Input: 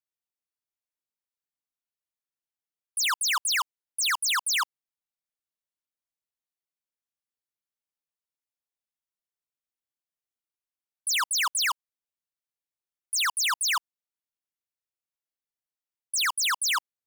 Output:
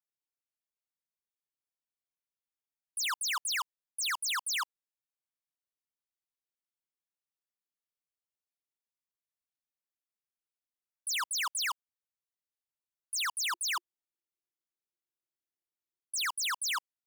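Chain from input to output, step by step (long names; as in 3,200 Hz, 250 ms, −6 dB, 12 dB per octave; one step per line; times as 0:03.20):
0:13.53–0:16.27: parametric band 350 Hz +14 dB 0.36 octaves
level −7 dB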